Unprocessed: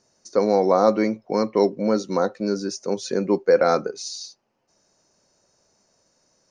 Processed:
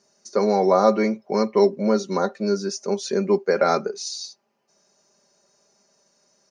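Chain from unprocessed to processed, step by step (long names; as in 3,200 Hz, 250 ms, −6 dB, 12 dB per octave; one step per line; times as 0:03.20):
high-pass filter 190 Hz 6 dB per octave
comb filter 5 ms, depth 67%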